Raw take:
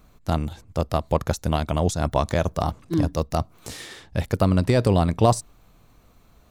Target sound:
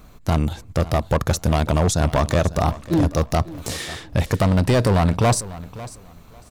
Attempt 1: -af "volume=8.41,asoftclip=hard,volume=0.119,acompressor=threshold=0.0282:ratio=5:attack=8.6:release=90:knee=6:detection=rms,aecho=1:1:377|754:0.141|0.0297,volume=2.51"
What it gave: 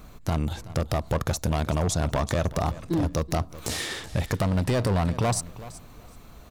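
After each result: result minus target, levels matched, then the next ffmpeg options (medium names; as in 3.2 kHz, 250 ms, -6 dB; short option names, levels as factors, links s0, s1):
compression: peak gain reduction +7 dB; echo 170 ms early
-af "volume=8.41,asoftclip=hard,volume=0.119,acompressor=threshold=0.0891:ratio=5:attack=8.6:release=90:knee=6:detection=rms,aecho=1:1:377|754:0.141|0.0297,volume=2.51"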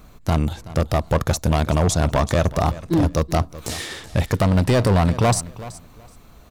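echo 170 ms early
-af "volume=8.41,asoftclip=hard,volume=0.119,acompressor=threshold=0.0891:ratio=5:attack=8.6:release=90:knee=6:detection=rms,aecho=1:1:547|1094:0.141|0.0297,volume=2.51"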